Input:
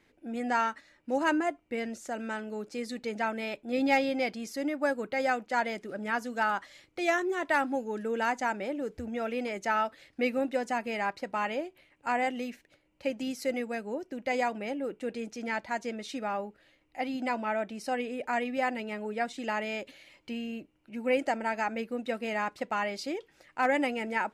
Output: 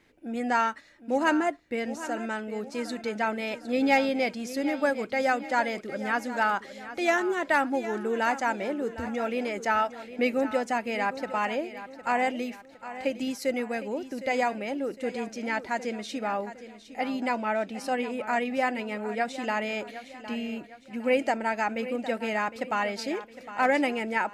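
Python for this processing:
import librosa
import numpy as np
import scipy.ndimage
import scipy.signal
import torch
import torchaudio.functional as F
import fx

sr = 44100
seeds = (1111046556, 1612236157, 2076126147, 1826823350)

y = fx.echo_feedback(x, sr, ms=759, feedback_pct=43, wet_db=-13.5)
y = y * librosa.db_to_amplitude(3.0)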